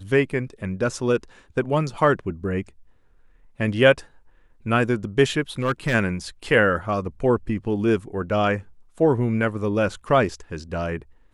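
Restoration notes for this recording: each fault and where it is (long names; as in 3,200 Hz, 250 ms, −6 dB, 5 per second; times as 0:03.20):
0:05.59–0:05.95: clipping −17 dBFS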